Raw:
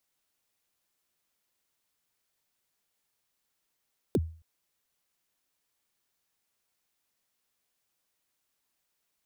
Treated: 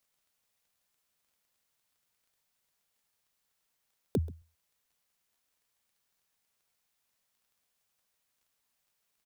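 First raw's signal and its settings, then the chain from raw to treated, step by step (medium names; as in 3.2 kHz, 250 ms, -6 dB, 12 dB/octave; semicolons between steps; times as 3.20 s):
kick drum length 0.27 s, from 490 Hz, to 81 Hz, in 42 ms, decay 0.41 s, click on, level -19 dB
peaking EQ 330 Hz -13 dB 0.23 oct; crackle 17 per s -62 dBFS; delay 132 ms -21 dB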